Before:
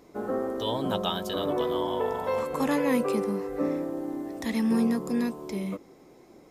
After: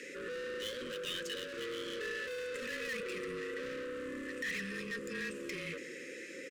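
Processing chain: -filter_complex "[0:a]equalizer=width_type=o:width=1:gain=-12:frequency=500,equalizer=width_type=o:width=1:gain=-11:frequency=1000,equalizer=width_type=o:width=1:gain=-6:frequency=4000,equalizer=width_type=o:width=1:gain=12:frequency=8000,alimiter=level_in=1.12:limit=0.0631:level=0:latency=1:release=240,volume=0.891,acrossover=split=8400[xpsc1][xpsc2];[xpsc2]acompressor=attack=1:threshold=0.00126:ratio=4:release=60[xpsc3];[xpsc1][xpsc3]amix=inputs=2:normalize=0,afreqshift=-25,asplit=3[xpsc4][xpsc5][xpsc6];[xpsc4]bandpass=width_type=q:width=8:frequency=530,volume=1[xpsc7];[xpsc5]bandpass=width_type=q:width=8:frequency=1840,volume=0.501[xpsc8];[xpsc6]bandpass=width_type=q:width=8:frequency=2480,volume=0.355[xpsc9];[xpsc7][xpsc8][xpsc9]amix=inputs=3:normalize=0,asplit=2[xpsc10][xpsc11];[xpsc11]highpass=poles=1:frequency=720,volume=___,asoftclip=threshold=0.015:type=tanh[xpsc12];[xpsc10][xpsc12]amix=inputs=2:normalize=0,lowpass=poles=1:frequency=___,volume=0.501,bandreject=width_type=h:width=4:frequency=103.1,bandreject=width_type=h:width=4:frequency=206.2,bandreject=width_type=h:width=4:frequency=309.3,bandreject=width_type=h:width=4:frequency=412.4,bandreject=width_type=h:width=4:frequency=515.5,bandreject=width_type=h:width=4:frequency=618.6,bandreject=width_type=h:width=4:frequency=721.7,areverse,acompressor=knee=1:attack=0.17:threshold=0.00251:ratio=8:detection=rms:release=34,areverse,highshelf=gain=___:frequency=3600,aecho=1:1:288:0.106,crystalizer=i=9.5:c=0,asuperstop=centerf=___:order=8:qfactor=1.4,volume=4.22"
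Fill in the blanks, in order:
25.1, 1100, -6, 750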